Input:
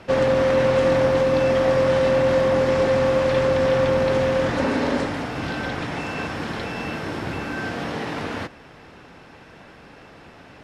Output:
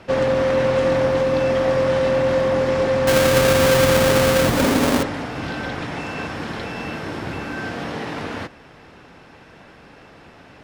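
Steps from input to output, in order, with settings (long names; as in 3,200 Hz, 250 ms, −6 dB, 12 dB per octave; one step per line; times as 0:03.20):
0:03.07–0:05.03: each half-wave held at its own peak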